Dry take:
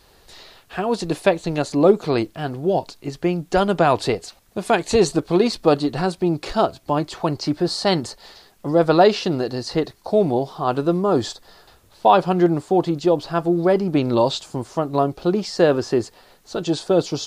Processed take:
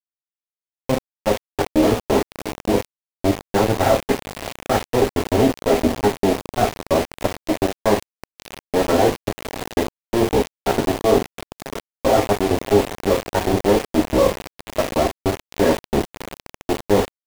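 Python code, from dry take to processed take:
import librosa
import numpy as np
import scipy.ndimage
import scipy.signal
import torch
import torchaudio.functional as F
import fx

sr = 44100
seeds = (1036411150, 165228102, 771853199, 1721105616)

p1 = fx.pitch_keep_formants(x, sr, semitones=-10.5)
p2 = scipy.signal.sosfilt(scipy.signal.butter(2, 160.0, 'highpass', fs=sr, output='sos'), p1)
p3 = fx.cheby_harmonics(p2, sr, harmonics=(2, 5, 7, 8), levels_db=(-33, -31, -23, -19), full_scale_db=-1.5)
p4 = scipy.signal.sosfilt(scipy.signal.ellip(4, 1.0, 40, 1900.0, 'lowpass', fs=sr, output='sos'), p3)
p5 = fx.level_steps(p4, sr, step_db=23)
p6 = fx.leveller(p5, sr, passes=1)
p7 = p6 + fx.echo_diffused(p6, sr, ms=618, feedback_pct=47, wet_db=-9.0, dry=0)
p8 = fx.rev_gated(p7, sr, seeds[0], gate_ms=120, shape='falling', drr_db=1.5)
p9 = np.where(np.abs(p8) >= 10.0 ** (-22.5 / 20.0), p8, 0.0)
p10 = fx.peak_eq(p9, sr, hz=1400.0, db=-7.0, octaves=0.7)
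y = p10 * 10.0 ** (4.0 / 20.0)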